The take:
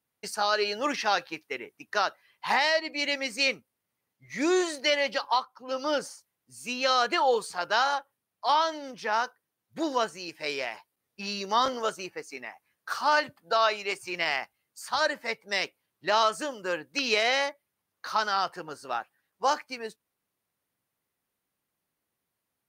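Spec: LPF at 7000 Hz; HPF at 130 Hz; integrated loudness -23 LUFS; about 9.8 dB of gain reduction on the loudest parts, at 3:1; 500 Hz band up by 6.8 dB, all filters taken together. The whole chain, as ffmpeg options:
-af "highpass=130,lowpass=7k,equalizer=f=500:t=o:g=8.5,acompressor=threshold=-26dB:ratio=3,volume=7.5dB"

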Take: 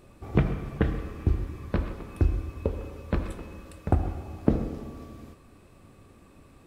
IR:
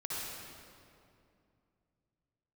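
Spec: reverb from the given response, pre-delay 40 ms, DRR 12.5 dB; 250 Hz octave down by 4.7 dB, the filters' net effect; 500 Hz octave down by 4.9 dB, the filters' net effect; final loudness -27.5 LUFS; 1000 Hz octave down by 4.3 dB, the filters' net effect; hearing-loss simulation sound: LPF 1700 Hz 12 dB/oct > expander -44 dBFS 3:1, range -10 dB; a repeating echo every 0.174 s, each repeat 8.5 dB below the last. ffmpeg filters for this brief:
-filter_complex "[0:a]equalizer=f=250:t=o:g=-5.5,equalizer=f=500:t=o:g=-3.5,equalizer=f=1k:t=o:g=-3.5,aecho=1:1:174|348|522|696:0.376|0.143|0.0543|0.0206,asplit=2[a][b];[1:a]atrim=start_sample=2205,adelay=40[c];[b][c]afir=irnorm=-1:irlink=0,volume=-15.5dB[d];[a][d]amix=inputs=2:normalize=0,lowpass=1.7k,agate=range=-10dB:threshold=-44dB:ratio=3,volume=4dB"

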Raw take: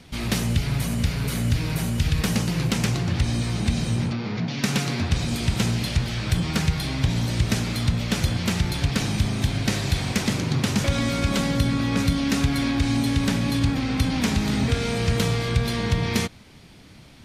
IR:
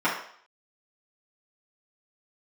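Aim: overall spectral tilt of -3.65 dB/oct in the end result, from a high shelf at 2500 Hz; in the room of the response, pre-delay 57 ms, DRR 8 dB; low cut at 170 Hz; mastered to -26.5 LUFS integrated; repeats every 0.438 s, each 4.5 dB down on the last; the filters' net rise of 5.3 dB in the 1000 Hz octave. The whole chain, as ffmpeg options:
-filter_complex "[0:a]highpass=170,equalizer=f=1k:t=o:g=6,highshelf=f=2.5k:g=4.5,aecho=1:1:438|876|1314|1752|2190|2628|3066|3504|3942:0.596|0.357|0.214|0.129|0.0772|0.0463|0.0278|0.0167|0.01,asplit=2[a][b];[1:a]atrim=start_sample=2205,adelay=57[c];[b][c]afir=irnorm=-1:irlink=0,volume=-23.5dB[d];[a][d]amix=inputs=2:normalize=0,volume=-4dB"

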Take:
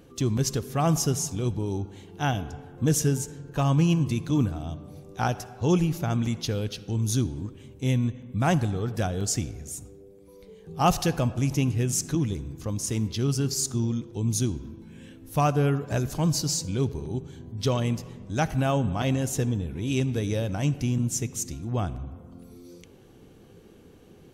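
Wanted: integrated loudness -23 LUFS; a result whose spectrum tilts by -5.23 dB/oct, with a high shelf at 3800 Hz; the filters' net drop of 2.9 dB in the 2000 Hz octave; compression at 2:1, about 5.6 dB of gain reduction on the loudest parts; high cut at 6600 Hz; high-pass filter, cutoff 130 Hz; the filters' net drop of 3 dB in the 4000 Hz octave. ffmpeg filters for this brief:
-af "highpass=130,lowpass=6.6k,equalizer=f=2k:t=o:g=-4,highshelf=f=3.8k:g=7.5,equalizer=f=4k:t=o:g=-8,acompressor=threshold=-28dB:ratio=2,volume=8.5dB"

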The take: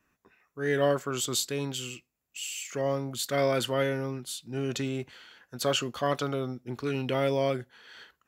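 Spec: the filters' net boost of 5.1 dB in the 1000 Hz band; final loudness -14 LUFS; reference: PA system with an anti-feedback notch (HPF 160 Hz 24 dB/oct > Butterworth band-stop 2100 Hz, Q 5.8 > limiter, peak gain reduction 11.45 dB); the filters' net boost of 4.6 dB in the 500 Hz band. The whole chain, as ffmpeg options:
-af "highpass=f=160:w=0.5412,highpass=f=160:w=1.3066,asuperstop=centerf=2100:order=8:qfactor=5.8,equalizer=f=500:t=o:g=4,equalizer=f=1k:t=o:g=5.5,volume=18dB,alimiter=limit=-4dB:level=0:latency=1"

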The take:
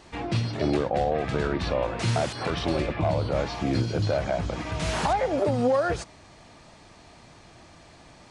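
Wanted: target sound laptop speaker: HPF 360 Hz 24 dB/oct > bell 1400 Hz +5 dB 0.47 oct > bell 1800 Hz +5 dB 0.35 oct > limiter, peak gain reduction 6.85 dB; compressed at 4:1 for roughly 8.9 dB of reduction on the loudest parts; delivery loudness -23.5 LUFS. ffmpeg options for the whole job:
-af "acompressor=threshold=-31dB:ratio=4,highpass=f=360:w=0.5412,highpass=f=360:w=1.3066,equalizer=f=1.4k:t=o:w=0.47:g=5,equalizer=f=1.8k:t=o:w=0.35:g=5,volume=13.5dB,alimiter=limit=-13.5dB:level=0:latency=1"

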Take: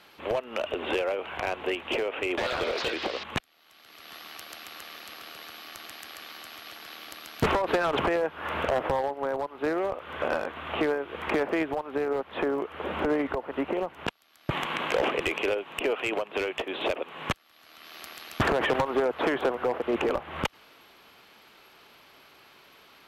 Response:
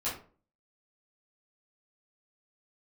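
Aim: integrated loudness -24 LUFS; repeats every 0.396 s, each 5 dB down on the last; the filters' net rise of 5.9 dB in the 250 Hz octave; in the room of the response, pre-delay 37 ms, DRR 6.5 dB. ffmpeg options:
-filter_complex "[0:a]equalizer=f=250:t=o:g=8,aecho=1:1:396|792|1188|1584|1980|2376|2772:0.562|0.315|0.176|0.0988|0.0553|0.031|0.0173,asplit=2[a][b];[1:a]atrim=start_sample=2205,adelay=37[c];[b][c]afir=irnorm=-1:irlink=0,volume=-12dB[d];[a][d]amix=inputs=2:normalize=0,volume=1dB"

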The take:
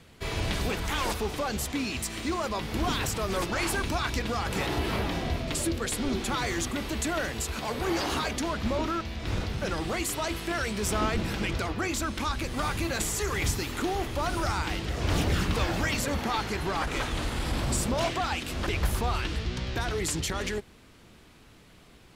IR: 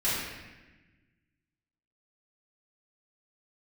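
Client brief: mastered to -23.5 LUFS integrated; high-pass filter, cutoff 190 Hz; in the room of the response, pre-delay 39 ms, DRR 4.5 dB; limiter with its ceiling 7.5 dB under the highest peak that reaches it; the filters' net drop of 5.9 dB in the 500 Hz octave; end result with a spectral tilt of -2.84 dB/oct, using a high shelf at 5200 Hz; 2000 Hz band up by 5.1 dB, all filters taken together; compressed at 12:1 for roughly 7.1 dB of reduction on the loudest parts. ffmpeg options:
-filter_complex "[0:a]highpass=190,equalizer=f=500:t=o:g=-8.5,equalizer=f=2k:t=o:g=7.5,highshelf=f=5.2k:g=-4,acompressor=threshold=-30dB:ratio=12,alimiter=level_in=2dB:limit=-24dB:level=0:latency=1,volume=-2dB,asplit=2[a][b];[1:a]atrim=start_sample=2205,adelay=39[c];[b][c]afir=irnorm=-1:irlink=0,volume=-15.5dB[d];[a][d]amix=inputs=2:normalize=0,volume=10.5dB"

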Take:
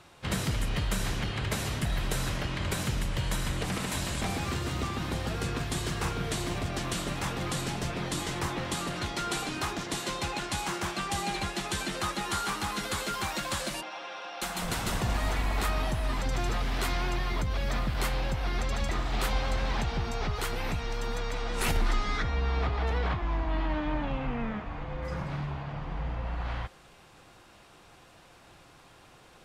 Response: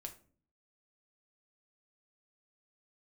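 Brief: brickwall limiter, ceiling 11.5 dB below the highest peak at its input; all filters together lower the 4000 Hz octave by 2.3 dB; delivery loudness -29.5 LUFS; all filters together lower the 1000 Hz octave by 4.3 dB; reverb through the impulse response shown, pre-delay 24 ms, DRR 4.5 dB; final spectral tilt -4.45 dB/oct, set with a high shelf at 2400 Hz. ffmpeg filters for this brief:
-filter_complex "[0:a]equalizer=f=1k:t=o:g=-6.5,highshelf=f=2.4k:g=6,equalizer=f=4k:t=o:g=-8,alimiter=level_in=3.5dB:limit=-24dB:level=0:latency=1,volume=-3.5dB,asplit=2[a][b];[1:a]atrim=start_sample=2205,adelay=24[c];[b][c]afir=irnorm=-1:irlink=0,volume=-0.5dB[d];[a][d]amix=inputs=2:normalize=0,volume=6dB"

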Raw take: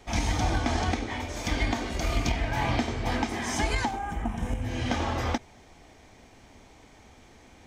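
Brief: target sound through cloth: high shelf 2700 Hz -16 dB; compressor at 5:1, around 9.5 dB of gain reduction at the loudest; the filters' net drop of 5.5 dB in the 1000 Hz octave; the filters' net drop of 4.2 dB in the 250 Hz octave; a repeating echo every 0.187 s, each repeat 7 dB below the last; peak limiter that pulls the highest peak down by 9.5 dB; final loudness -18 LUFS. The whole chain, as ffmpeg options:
-af "equalizer=f=250:t=o:g=-4.5,equalizer=f=1k:t=o:g=-5,acompressor=threshold=-33dB:ratio=5,alimiter=level_in=6.5dB:limit=-24dB:level=0:latency=1,volume=-6.5dB,highshelf=f=2.7k:g=-16,aecho=1:1:187|374|561|748|935:0.447|0.201|0.0905|0.0407|0.0183,volume=23dB"

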